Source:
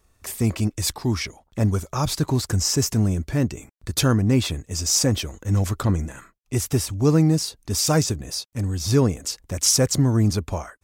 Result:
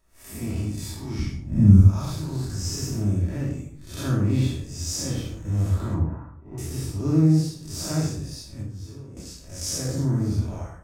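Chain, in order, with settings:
spectrum smeared in time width 156 ms
0:01.19–0:01.81: low shelf with overshoot 320 Hz +13.5 dB, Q 1.5
speech leveller within 4 dB 2 s
0:05.94–0:06.58: low-pass with resonance 950 Hz, resonance Q 3.7
0:08.62–0:09.17: downward compressor 16 to 1, threshold −33 dBFS, peak gain reduction 20 dB
rectangular room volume 500 cubic metres, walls furnished, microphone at 2.8 metres
level −11 dB

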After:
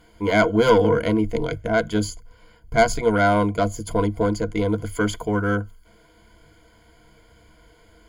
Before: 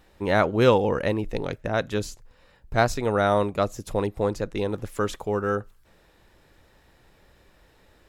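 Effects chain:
harmonic generator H 4 −11 dB, 5 −22 dB, 6 −6 dB, 8 −15 dB, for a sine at −4 dBFS
soft clipping −8.5 dBFS, distortion −19 dB
EQ curve with evenly spaced ripples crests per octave 1.8, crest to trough 18 dB
level −1.5 dB

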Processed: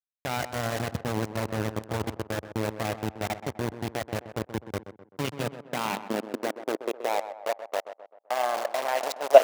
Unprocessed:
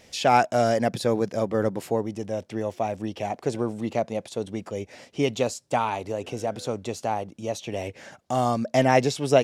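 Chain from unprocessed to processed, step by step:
low-pass that shuts in the quiet parts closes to 2,800 Hz, open at −18.5 dBFS
output level in coarse steps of 15 dB
feedback delay network reverb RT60 3.2 s, high-frequency decay 0.4×, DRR 11 dB
centre clipping without the shift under −27 dBFS
on a send: tape delay 128 ms, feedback 50%, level −10.5 dB, low-pass 1,800 Hz
on the sum: high-pass filter sweep 82 Hz → 640 Hz, 0:04.84–0:07.53
level +1.5 dB

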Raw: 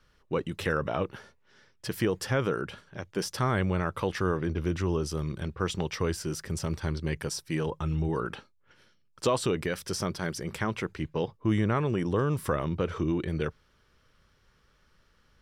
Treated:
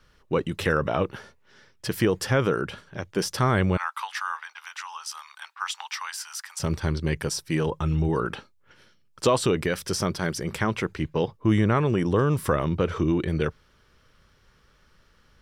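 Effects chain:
0:03.77–0:06.60: Chebyshev high-pass filter 850 Hz, order 5
level +5 dB

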